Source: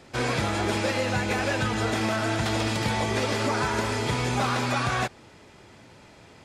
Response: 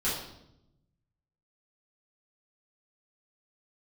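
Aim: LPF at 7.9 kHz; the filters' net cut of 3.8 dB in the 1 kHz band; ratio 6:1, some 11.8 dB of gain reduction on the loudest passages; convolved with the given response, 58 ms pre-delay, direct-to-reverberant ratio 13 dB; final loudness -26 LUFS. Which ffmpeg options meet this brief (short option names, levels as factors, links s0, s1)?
-filter_complex "[0:a]lowpass=7900,equalizer=f=1000:t=o:g=-5,acompressor=threshold=0.0158:ratio=6,asplit=2[s0][s1];[1:a]atrim=start_sample=2205,adelay=58[s2];[s1][s2]afir=irnorm=-1:irlink=0,volume=0.0841[s3];[s0][s3]amix=inputs=2:normalize=0,volume=3.98"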